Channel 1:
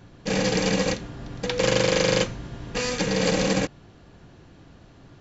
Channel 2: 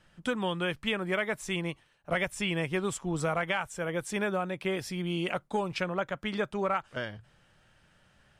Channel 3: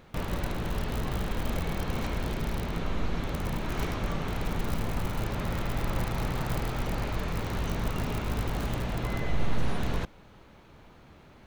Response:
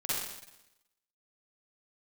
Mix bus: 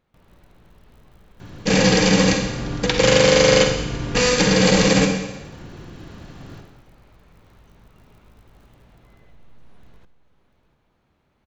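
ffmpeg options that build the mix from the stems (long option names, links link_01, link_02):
-filter_complex "[0:a]equalizer=frequency=650:width_type=o:width=0.77:gain=-3,adelay=1400,volume=3dB,asplit=2[link_01][link_02];[link_02]volume=-7dB[link_03];[2:a]acompressor=threshold=-41dB:ratio=2,volume=-18.5dB,asplit=3[link_04][link_05][link_06];[link_05]volume=-18dB[link_07];[link_06]volume=-13dB[link_08];[3:a]atrim=start_sample=2205[link_09];[link_03][link_07]amix=inputs=2:normalize=0[link_10];[link_10][link_09]afir=irnorm=-1:irlink=0[link_11];[link_08]aecho=0:1:693:1[link_12];[link_01][link_04][link_11][link_12]amix=inputs=4:normalize=0,dynaudnorm=framelen=160:gausssize=3:maxgain=4dB"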